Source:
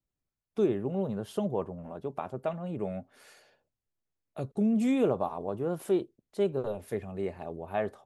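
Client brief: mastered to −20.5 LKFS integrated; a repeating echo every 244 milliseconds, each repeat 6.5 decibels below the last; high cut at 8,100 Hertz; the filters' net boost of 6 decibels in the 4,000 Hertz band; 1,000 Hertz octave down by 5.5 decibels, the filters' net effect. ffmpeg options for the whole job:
ffmpeg -i in.wav -af "lowpass=8100,equalizer=frequency=1000:width_type=o:gain=-8.5,equalizer=frequency=4000:width_type=o:gain=8.5,aecho=1:1:244|488|732|976|1220|1464:0.473|0.222|0.105|0.0491|0.0231|0.0109,volume=11.5dB" out.wav

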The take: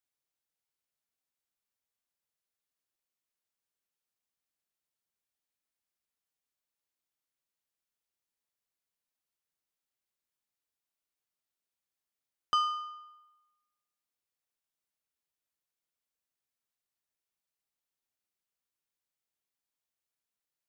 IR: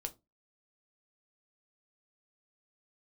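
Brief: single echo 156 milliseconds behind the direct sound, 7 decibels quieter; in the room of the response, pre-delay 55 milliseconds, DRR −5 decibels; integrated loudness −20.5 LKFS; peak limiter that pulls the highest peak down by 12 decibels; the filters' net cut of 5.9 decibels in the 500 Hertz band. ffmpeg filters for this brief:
-filter_complex "[0:a]equalizer=frequency=500:width_type=o:gain=-8,alimiter=level_in=6.5dB:limit=-24dB:level=0:latency=1,volume=-6.5dB,aecho=1:1:156:0.447,asplit=2[link_01][link_02];[1:a]atrim=start_sample=2205,adelay=55[link_03];[link_02][link_03]afir=irnorm=-1:irlink=0,volume=6.5dB[link_04];[link_01][link_04]amix=inputs=2:normalize=0,volume=15dB"

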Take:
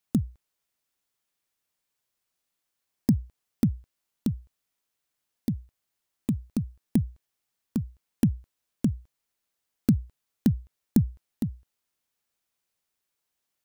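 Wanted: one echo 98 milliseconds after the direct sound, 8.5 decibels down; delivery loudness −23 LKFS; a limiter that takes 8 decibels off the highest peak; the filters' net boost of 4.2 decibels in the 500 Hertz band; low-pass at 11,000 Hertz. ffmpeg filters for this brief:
ffmpeg -i in.wav -af "lowpass=11000,equalizer=frequency=500:width_type=o:gain=6,alimiter=limit=-15dB:level=0:latency=1,aecho=1:1:98:0.376,volume=9dB" out.wav

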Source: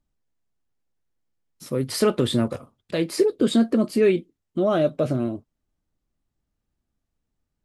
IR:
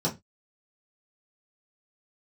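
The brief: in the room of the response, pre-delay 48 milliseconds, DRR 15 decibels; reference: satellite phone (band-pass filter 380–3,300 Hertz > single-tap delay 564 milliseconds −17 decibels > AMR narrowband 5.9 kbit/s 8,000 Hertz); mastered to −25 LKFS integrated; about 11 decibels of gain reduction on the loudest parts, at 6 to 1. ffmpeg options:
-filter_complex "[0:a]acompressor=threshold=-26dB:ratio=6,asplit=2[link_01][link_02];[1:a]atrim=start_sample=2205,adelay=48[link_03];[link_02][link_03]afir=irnorm=-1:irlink=0,volume=-24dB[link_04];[link_01][link_04]amix=inputs=2:normalize=0,highpass=380,lowpass=3300,aecho=1:1:564:0.141,volume=11.5dB" -ar 8000 -c:a libopencore_amrnb -b:a 5900

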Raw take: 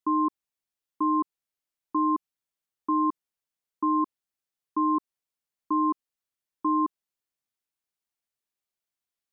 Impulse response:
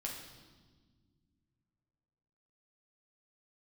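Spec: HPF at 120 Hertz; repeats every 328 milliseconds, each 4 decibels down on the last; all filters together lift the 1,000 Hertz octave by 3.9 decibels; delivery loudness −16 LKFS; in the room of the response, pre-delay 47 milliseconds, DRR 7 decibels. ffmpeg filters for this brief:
-filter_complex "[0:a]highpass=120,equalizer=frequency=1000:width_type=o:gain=4,aecho=1:1:328|656|984|1312|1640|1968|2296|2624|2952:0.631|0.398|0.25|0.158|0.0994|0.0626|0.0394|0.0249|0.0157,asplit=2[link_01][link_02];[1:a]atrim=start_sample=2205,adelay=47[link_03];[link_02][link_03]afir=irnorm=-1:irlink=0,volume=-7dB[link_04];[link_01][link_04]amix=inputs=2:normalize=0,volume=10.5dB"

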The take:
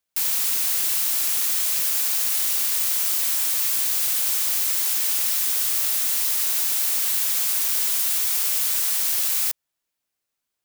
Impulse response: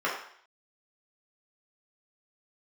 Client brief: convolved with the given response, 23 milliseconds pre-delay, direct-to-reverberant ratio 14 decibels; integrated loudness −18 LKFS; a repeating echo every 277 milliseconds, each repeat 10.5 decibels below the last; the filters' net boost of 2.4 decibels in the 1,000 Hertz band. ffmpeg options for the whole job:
-filter_complex "[0:a]equalizer=frequency=1000:width_type=o:gain=3,aecho=1:1:277|554|831:0.299|0.0896|0.0269,asplit=2[link_01][link_02];[1:a]atrim=start_sample=2205,adelay=23[link_03];[link_02][link_03]afir=irnorm=-1:irlink=0,volume=-26dB[link_04];[link_01][link_04]amix=inputs=2:normalize=0,volume=0.5dB"

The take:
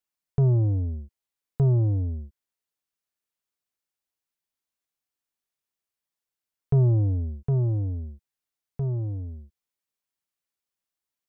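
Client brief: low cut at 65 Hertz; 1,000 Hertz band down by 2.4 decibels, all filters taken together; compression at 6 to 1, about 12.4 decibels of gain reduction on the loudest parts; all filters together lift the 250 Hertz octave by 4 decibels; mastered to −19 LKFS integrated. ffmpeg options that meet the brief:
ffmpeg -i in.wav -af "highpass=65,equalizer=frequency=250:width_type=o:gain=8.5,equalizer=frequency=1000:width_type=o:gain=-4.5,acompressor=threshold=-28dB:ratio=6,volume=14.5dB" out.wav

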